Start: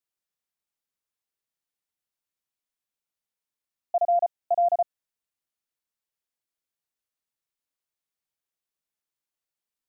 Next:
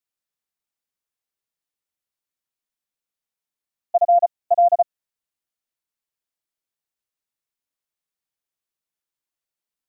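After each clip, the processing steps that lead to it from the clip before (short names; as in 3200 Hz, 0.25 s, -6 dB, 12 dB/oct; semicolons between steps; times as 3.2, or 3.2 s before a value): level quantiser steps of 11 dB; gain +9 dB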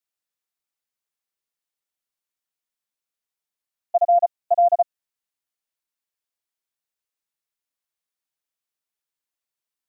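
low shelf 400 Hz -5.5 dB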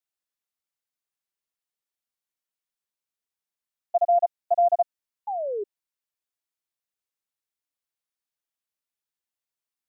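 painted sound fall, 5.27–5.64, 390–860 Hz -25 dBFS; gain -3.5 dB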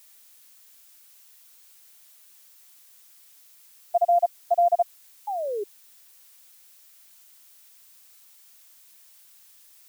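added noise blue -54 dBFS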